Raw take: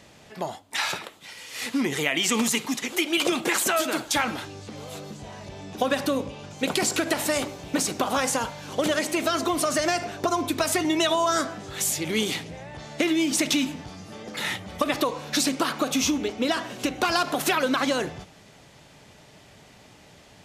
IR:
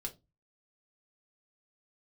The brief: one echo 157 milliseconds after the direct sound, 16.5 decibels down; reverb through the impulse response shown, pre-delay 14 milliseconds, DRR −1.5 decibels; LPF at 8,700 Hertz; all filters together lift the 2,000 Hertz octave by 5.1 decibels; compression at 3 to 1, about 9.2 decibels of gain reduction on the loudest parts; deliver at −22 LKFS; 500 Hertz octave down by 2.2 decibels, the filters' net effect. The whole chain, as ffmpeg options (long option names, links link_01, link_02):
-filter_complex "[0:a]lowpass=8700,equalizer=frequency=500:width_type=o:gain=-3.5,equalizer=frequency=2000:width_type=o:gain=6.5,acompressor=threshold=-30dB:ratio=3,aecho=1:1:157:0.15,asplit=2[link_01][link_02];[1:a]atrim=start_sample=2205,adelay=14[link_03];[link_02][link_03]afir=irnorm=-1:irlink=0,volume=3dB[link_04];[link_01][link_04]amix=inputs=2:normalize=0,volume=5.5dB"